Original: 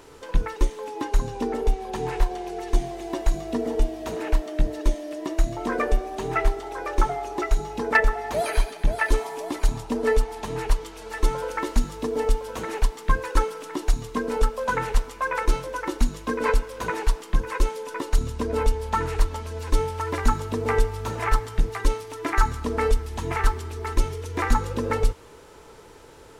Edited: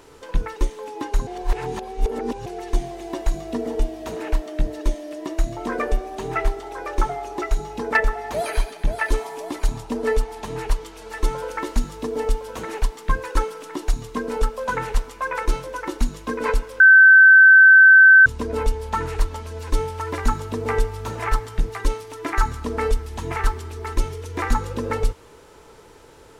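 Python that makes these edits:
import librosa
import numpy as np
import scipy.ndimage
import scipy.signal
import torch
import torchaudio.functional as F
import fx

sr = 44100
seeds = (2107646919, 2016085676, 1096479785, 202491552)

y = fx.edit(x, sr, fx.reverse_span(start_s=1.27, length_s=1.19),
    fx.bleep(start_s=16.8, length_s=1.46, hz=1540.0, db=-6.0), tone=tone)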